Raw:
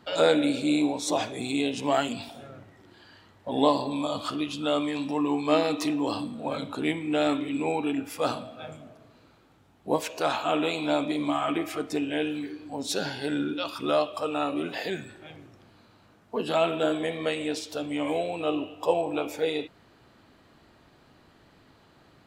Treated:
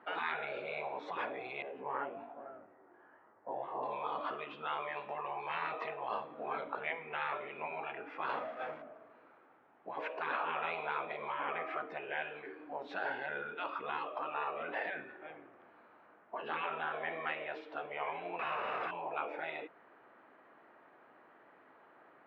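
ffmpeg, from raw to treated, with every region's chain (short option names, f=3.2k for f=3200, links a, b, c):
-filter_complex "[0:a]asettb=1/sr,asplit=3[a][b][c];[a]atrim=end=1.624[d];[b]atrim=start=1.62:end=3.83,asetpts=PTS-STARTPTS,afade=t=in:d=0.004:c=qsin,afade=t=out:st=2.206:d=0.004:c=qsin,lowpass=1.3k,flanger=delay=17.5:depth=5.8:speed=1.2,aecho=1:1:491:0.0668,atrim=end_sample=97461[e];[c]atrim=start=3.826[f];[d][e]acrossfade=d=0.004:c1=hsin:c2=qsin[g];[g][f]acrossfade=d=0.004:c1=qsin:c2=hsin,asettb=1/sr,asplit=3[h][i][j];[h]atrim=end=8.294[k];[i]atrim=start=8.29:end=8.82,asetpts=PTS-STARTPTS,afade=t=in:d=0.004:c=qsin,afade=t=out:st=0.526:d=0.004:c=qsin,aeval=exprs='val(0)+0.5*0.0168*sgn(val(0))':c=same,highshelf=f=4.7k:g=9.5,agate=range=-33dB:threshold=-32dB:ratio=3:release=100:detection=peak[l];[j]atrim=start=8.816[m];[k][l]acrossfade=d=0.004:c1=hsin:c2=qsin[n];[n][m]acrossfade=d=0.004:c1=qsin:c2=hsin,asettb=1/sr,asplit=3[o][p][q];[o]atrim=end=18.394[r];[p]atrim=start=18.39:end=18.91,asetpts=PTS-STARTPTS,afade=t=in:d=0.004:c=qsin,afade=t=out:st=0.516:d=0.004:c=qsin,aeval=exprs='val(0)+0.5*0.0473*sgn(val(0))':c=same,aecho=1:1:0.8:0.37,atrim=end_sample=22932[s];[q]atrim=start=18.906[t];[r][s]acrossfade=d=0.004:c1=hsin:c2=qsin[u];[u][t]acrossfade=d=0.004:c1=qsin:c2=hsin,lowpass=f=2k:w=0.5412,lowpass=f=2k:w=1.3066,afftfilt=real='re*lt(hypot(re,im),0.112)':imag='im*lt(hypot(re,im),0.112)':win_size=1024:overlap=0.75,highpass=480,volume=1dB"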